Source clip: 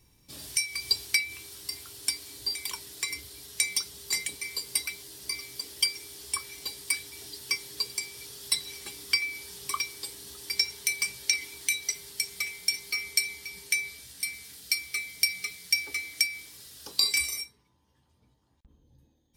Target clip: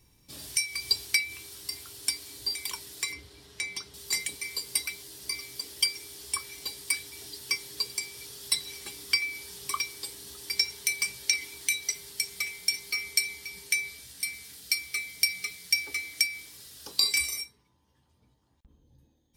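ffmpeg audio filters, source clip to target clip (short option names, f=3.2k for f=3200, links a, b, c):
-filter_complex "[0:a]asettb=1/sr,asplit=3[a][b][c];[a]atrim=end=3.124[d];[b]atrim=start=3.12:end=3.94,asetpts=PTS-STARTPTS,afade=t=in:d=0.004:c=qsin,afade=t=out:st=0.816:d=0.004:c=qsin,aemphasis=mode=reproduction:type=75fm[e];[c]atrim=start=3.936[f];[d][e]acrossfade=d=0.004:c1=hsin:c2=qsin[g];[g][f]acrossfade=d=0.004:c1=qsin:c2=hsin"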